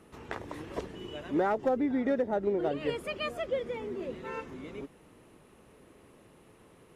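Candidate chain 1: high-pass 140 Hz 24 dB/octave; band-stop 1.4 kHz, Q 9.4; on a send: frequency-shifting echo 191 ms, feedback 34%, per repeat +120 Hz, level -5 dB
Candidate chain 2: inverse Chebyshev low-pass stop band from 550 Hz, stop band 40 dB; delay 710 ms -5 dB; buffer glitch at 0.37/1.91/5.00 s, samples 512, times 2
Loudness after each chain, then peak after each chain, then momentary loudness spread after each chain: -32.0 LUFS, -40.5 LUFS; -15.5 dBFS, -24.0 dBFS; 15 LU, 19 LU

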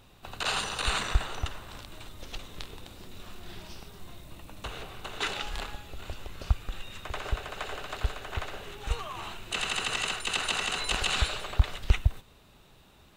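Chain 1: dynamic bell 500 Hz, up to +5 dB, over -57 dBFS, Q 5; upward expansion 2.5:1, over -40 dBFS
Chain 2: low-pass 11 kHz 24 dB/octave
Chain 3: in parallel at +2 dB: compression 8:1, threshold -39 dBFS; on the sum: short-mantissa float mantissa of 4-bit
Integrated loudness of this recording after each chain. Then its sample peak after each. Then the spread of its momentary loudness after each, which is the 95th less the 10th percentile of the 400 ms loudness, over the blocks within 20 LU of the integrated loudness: -36.5 LUFS, -32.0 LUFS, -30.5 LUFS; -10.5 dBFS, -10.5 dBFS, -9.5 dBFS; 22 LU, 18 LU, 14 LU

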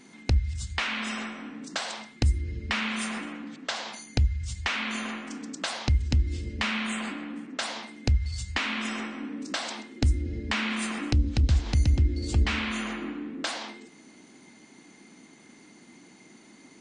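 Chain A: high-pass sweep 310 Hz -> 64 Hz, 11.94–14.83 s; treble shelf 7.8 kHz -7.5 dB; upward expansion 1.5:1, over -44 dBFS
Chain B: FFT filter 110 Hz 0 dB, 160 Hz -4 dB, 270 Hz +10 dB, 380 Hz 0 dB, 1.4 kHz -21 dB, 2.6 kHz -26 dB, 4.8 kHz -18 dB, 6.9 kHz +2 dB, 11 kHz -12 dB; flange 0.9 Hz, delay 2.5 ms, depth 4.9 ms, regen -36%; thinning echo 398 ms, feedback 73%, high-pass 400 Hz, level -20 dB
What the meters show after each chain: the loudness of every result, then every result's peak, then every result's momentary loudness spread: -35.0 LUFS, -33.5 LUFS; -9.5 dBFS, -12.0 dBFS; 10 LU, 23 LU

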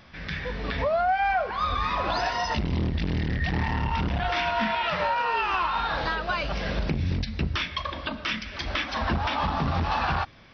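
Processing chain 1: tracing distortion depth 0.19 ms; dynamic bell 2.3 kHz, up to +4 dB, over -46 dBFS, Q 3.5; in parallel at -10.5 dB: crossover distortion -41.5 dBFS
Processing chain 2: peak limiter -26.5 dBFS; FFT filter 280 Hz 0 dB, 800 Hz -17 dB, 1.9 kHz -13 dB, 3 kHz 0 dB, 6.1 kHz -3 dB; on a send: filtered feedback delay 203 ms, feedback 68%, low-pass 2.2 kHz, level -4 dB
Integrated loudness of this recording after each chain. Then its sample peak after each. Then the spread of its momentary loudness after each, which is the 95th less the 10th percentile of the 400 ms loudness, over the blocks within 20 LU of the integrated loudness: -24.5 LUFS, -37.0 LUFS; -12.0 dBFS, -20.5 dBFS; 6 LU, 7 LU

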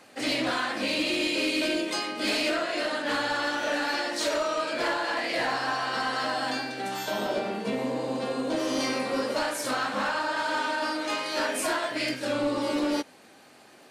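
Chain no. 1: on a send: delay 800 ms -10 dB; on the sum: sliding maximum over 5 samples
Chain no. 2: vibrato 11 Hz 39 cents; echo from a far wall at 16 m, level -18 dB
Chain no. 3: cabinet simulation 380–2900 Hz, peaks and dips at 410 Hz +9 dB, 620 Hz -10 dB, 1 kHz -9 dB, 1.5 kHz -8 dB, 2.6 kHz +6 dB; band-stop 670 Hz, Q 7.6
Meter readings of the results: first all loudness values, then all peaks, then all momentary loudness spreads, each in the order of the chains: -28.5 LUFS, -28.0 LUFS, -31.5 LUFS; -17.0 dBFS, -19.5 dBFS, -17.0 dBFS; 4 LU, 4 LU, 7 LU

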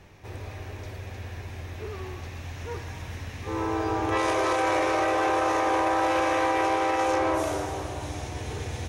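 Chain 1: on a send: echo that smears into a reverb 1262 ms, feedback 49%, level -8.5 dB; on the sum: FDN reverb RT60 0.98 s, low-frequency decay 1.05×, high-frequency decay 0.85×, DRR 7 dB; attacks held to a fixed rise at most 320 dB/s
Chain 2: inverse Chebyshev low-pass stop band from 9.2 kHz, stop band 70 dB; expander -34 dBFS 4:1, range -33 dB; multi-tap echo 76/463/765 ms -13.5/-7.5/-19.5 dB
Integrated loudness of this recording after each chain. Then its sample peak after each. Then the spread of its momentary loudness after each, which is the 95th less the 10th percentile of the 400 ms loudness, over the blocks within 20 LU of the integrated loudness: -26.0 LUFS, -25.0 LUFS; -12.5 dBFS, -12.5 dBFS; 16 LU, 17 LU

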